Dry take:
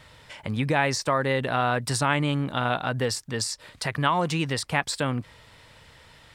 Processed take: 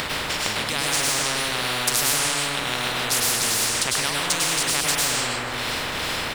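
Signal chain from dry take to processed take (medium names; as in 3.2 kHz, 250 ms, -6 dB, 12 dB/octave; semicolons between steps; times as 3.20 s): in parallel at -2 dB: upward compressor, threshold -29 dBFS; on the sum: tremolo 2.5 Hz, depth 58%; hysteresis with a dead band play -42.5 dBFS; on a send: feedback delay 153 ms, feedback 35%, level -17 dB; on the sum: plate-style reverb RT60 0.89 s, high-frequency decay 0.55×, pre-delay 90 ms, DRR -7 dB; spectrum-flattening compressor 10:1; trim -6 dB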